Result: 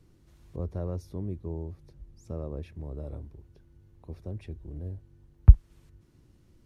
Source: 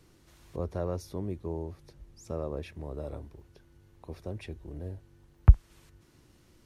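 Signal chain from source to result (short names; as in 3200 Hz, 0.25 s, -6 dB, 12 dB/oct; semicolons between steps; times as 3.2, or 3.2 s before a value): low shelf 360 Hz +12 dB; gain -8.5 dB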